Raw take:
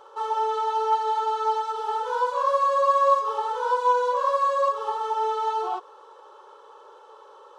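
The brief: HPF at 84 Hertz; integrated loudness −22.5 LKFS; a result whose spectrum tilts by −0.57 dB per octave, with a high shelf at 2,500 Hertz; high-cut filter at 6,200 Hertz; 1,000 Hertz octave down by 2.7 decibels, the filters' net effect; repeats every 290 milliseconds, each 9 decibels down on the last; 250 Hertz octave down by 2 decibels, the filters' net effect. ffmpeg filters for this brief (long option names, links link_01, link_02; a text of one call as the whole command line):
ffmpeg -i in.wav -af "highpass=84,lowpass=6200,equalizer=frequency=250:width_type=o:gain=-4,equalizer=frequency=1000:width_type=o:gain=-4,highshelf=frequency=2500:gain=7.5,aecho=1:1:290|580|870|1160:0.355|0.124|0.0435|0.0152,volume=3dB" out.wav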